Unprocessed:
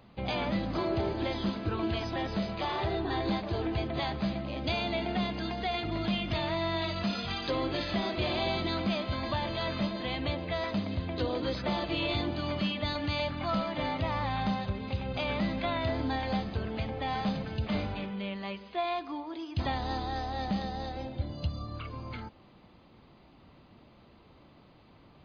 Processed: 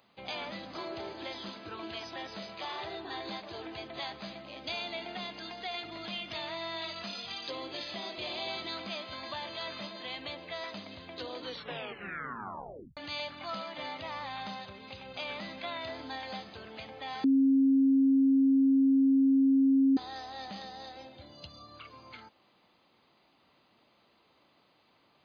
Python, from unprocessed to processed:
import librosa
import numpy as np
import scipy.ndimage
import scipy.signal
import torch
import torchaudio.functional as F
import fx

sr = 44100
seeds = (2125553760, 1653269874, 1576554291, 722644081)

y = fx.peak_eq(x, sr, hz=1500.0, db=-5.0, octaves=0.77, at=(7.1, 8.48))
y = fx.edit(y, sr, fx.tape_stop(start_s=11.42, length_s=1.55),
    fx.bleep(start_s=17.24, length_s=2.73, hz=270.0, db=-7.5), tone=tone)
y = fx.highpass(y, sr, hz=620.0, slope=6)
y = fx.high_shelf(y, sr, hz=4300.0, db=8.0)
y = y * 10.0 ** (-5.0 / 20.0)